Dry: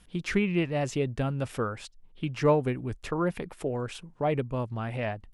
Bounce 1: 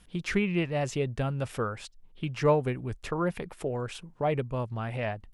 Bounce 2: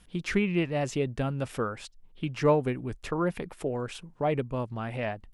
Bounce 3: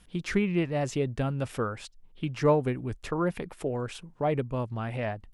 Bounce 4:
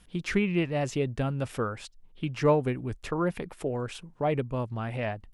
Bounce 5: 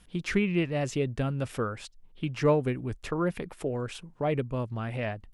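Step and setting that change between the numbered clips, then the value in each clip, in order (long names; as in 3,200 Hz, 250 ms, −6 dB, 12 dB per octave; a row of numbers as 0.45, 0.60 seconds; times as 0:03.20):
dynamic equaliser, frequency: 280, 100, 2,700, 8,000, 840 Hertz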